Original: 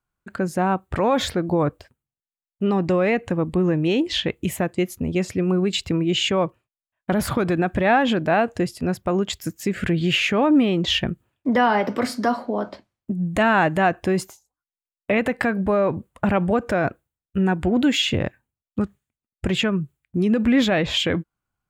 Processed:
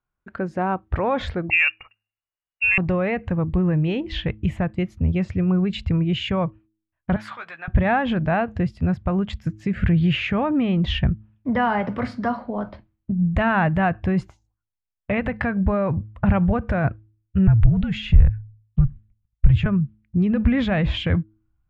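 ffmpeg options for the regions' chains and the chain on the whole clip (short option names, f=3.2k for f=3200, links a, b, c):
-filter_complex "[0:a]asettb=1/sr,asplit=3[a][b][c];[a]atrim=end=1.504[d];[b]atrim=start=1.5:end=2.78,asetpts=PTS-STARTPTS,afade=t=in:d=0.004:c=qsin,afade=t=out:st=1.276:d=0.004:c=qsin,lowpass=f=2.5k:t=q:w=0.5098,lowpass=f=2.5k:t=q:w=0.6013,lowpass=f=2.5k:t=q:w=0.9,lowpass=f=2.5k:t=q:w=2.563,afreqshift=-2900,acontrast=59[e];[c]atrim=start=2.776[f];[d][e]acrossfade=d=0.004:c1=hsin:c2=qsin[g];[g][f]acrossfade=d=0.004:c1=qsin:c2=hsin,asettb=1/sr,asplit=3[h][i][j];[h]atrim=end=7.164[k];[i]atrim=start=7.16:end=7.68,asetpts=PTS-STARTPTS,afade=t=in:d=0.004:c=qsin,afade=t=out:st=0.516:d=0.004:c=qsin,highpass=1.4k,asplit=2[l][m];[m]adelay=13,volume=-7.5dB[n];[l][n]amix=inputs=2:normalize=0,atrim=end_sample=22932[o];[j]atrim=start=7.676[p];[k][o]acrossfade=d=0.004:c1=hsin:c2=qsin[q];[q][p]acrossfade=d=0.004:c1=qsin:c2=hsin,asettb=1/sr,asplit=3[r][s][t];[r]atrim=end=17.474[u];[s]atrim=start=17.47:end=19.66,asetpts=PTS-STARTPTS,afade=t=in:d=0.004:c=qsin,afade=t=out:st=2.186:d=0.004:c=qsin,lowshelf=f=230:t=q:w=1.5:g=7.5,acompressor=threshold=-22dB:ratio=4:attack=3.2:release=140:knee=1:detection=peak,afreqshift=-56[v];[t]atrim=start=19.656[w];[u][v]acrossfade=d=0.004:c1=hsin:c2=qsin[x];[x][w]acrossfade=d=0.004:c1=qsin:c2=hsin,lowpass=2.5k,bandreject=f=107.1:t=h:w=4,bandreject=f=214.2:t=h:w=4,bandreject=f=321.3:t=h:w=4,asubboost=boost=11.5:cutoff=95,volume=-1.5dB"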